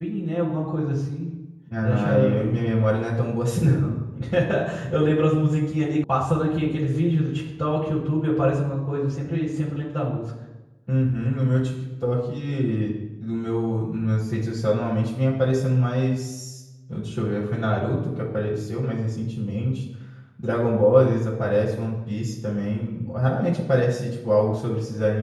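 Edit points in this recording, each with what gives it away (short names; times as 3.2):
6.04 sound cut off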